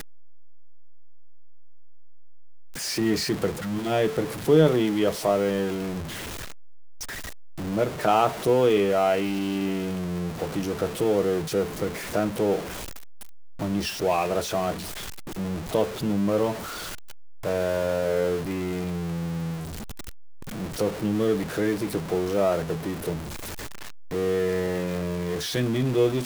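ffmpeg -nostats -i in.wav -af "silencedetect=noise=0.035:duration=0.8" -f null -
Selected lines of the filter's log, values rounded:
silence_start: 0.00
silence_end: 2.81 | silence_duration: 2.81
silence_start: 6.01
silence_end: 7.02 | silence_duration: 1.01
silence_start: 12.60
silence_end: 13.61 | silence_duration: 1.01
silence_start: 16.53
silence_end: 17.45 | silence_duration: 0.92
silence_start: 19.56
silence_end: 20.56 | silence_duration: 1.00
silence_start: 23.17
silence_end: 24.12 | silence_duration: 0.95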